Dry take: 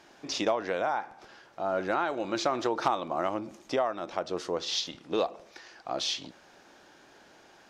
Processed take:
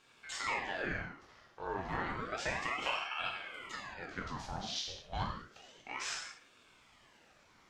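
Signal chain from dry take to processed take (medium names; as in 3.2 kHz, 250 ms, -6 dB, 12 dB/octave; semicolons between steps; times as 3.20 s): spectral replace 3.33–3.90 s, 260–2000 Hz after; gated-style reverb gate 240 ms falling, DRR -1.5 dB; ring modulator with a swept carrier 1.1 kHz, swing 80%, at 0.31 Hz; trim -8.5 dB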